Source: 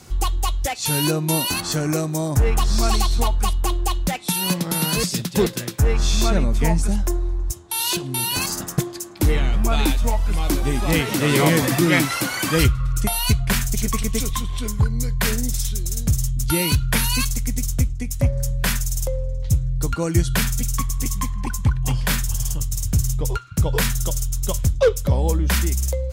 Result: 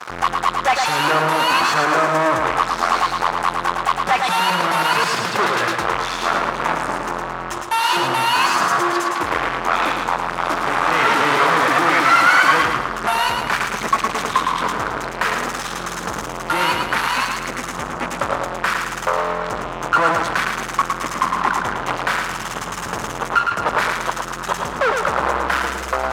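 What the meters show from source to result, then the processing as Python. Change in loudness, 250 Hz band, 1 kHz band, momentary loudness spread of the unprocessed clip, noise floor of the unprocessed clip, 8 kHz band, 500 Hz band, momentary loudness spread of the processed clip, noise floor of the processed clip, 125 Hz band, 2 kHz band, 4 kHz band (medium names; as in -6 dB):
+3.0 dB, -4.5 dB, +13.5 dB, 6 LU, -32 dBFS, -6.0 dB, +2.0 dB, 10 LU, -29 dBFS, -13.0 dB, +9.5 dB, +2.0 dB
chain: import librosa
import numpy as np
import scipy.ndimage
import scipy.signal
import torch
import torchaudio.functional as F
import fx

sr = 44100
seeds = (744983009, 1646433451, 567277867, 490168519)

y = fx.fuzz(x, sr, gain_db=43.0, gate_db=-41.0)
y = fx.bandpass_q(y, sr, hz=1200.0, q=1.9)
y = fx.echo_feedback(y, sr, ms=110, feedback_pct=44, wet_db=-4.5)
y = F.gain(torch.from_numpy(y), 7.0).numpy()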